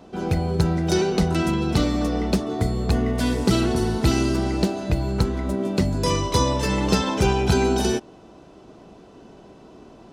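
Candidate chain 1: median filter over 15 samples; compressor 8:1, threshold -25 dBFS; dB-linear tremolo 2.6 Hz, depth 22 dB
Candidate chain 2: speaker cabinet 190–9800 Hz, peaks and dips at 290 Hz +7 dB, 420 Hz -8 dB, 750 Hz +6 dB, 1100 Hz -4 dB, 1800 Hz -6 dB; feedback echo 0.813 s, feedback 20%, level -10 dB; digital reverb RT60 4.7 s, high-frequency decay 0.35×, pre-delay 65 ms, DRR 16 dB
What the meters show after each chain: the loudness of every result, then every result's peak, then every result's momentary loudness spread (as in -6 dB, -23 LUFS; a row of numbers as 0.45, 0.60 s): -35.5, -23.5 LUFS; -14.5, -8.0 dBFS; 18, 10 LU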